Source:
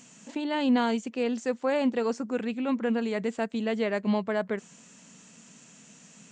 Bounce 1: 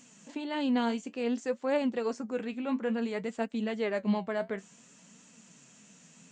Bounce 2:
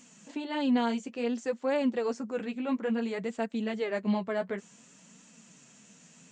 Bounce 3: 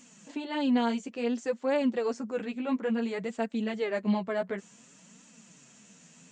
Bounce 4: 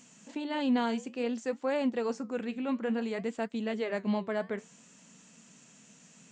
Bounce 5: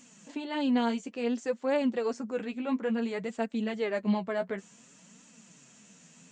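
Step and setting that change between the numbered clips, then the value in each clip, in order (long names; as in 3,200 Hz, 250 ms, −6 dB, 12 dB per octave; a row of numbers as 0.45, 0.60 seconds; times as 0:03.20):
flanger, regen: +59, −24, +1, −76, +22%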